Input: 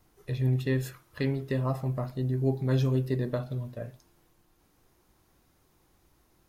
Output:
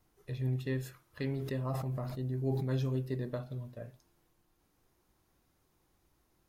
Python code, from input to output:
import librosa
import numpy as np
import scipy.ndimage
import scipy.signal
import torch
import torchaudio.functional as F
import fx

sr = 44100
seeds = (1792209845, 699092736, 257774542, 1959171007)

y = fx.sustainer(x, sr, db_per_s=30.0, at=(1.19, 2.65))
y = y * 10.0 ** (-7.0 / 20.0)